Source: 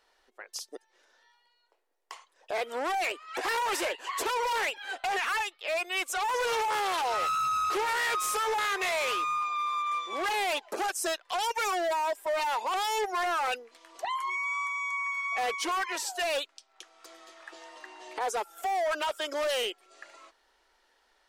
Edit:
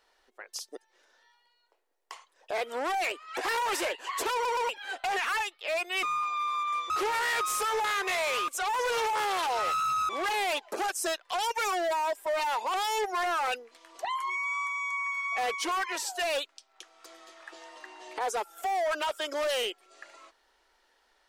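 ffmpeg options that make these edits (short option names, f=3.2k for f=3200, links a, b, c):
-filter_complex "[0:a]asplit=8[a][b][c][d][e][f][g][h];[a]atrim=end=4.452[i];[b]atrim=start=4.328:end=4.452[j];[c]atrim=start=4.328:end=4.452[k];[d]atrim=start=4.688:end=6.032[l];[e]atrim=start=9.218:end=10.092[m];[f]atrim=start=7.638:end=9.222[n];[g]atrim=start=6.028:end=7.642[o];[h]atrim=start=10.088[p];[i][j]acrossfade=d=0.004:c1=hsin:c2=hsin[q];[q][k]acrossfade=d=0.004:c1=hsin:c2=hsin[r];[r][l]acrossfade=d=0.004:c1=hsin:c2=hsin[s];[s][m]acrossfade=d=0.004:c1=hsin:c2=hsin[t];[t][n]acrossfade=d=0.004:c1=hsin:c2=hsin[u];[u][o]acrossfade=d=0.004:c1=hsin:c2=hsin[v];[v][p]acrossfade=d=0.004:c1=hsin:c2=hsin"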